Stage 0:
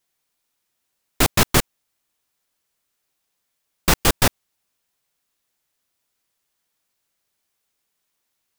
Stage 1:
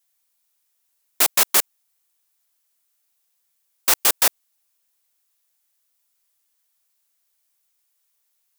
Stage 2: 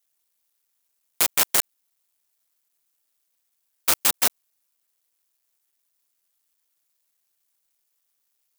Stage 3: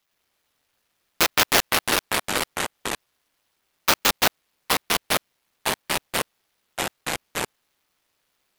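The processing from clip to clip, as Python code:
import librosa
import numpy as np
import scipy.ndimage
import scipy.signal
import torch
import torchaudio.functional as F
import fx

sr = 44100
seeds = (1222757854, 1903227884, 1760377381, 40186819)

y1 = scipy.signal.sosfilt(scipy.signal.butter(2, 540.0, 'highpass', fs=sr, output='sos'), x)
y1 = fx.high_shelf(y1, sr, hz=6300.0, db=11.0)
y1 = y1 * librosa.db_to_amplitude(-3.5)
y2 = fx.cycle_switch(y1, sr, every=2, mode='muted')
y3 = scipy.ndimage.median_filter(y2, 5, mode='constant')
y3 = fx.echo_pitch(y3, sr, ms=85, semitones=-3, count=3, db_per_echo=-3.0)
y3 = y3 * librosa.db_to_amplitude(6.0)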